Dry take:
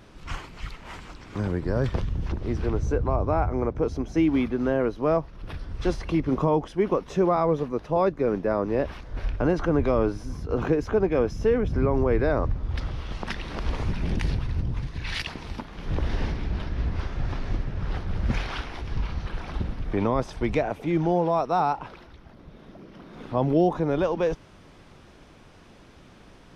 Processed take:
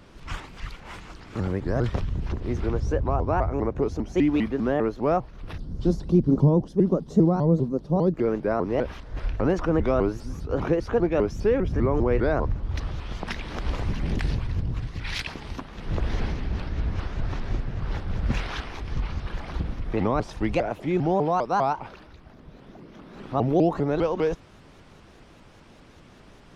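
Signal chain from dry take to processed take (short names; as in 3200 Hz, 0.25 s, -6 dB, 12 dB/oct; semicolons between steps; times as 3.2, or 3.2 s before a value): 5.58–8.14 EQ curve 110 Hz 0 dB, 160 Hz +10 dB, 2500 Hz -19 dB, 4100 Hz -4 dB; shaped vibrato saw up 5 Hz, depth 250 cents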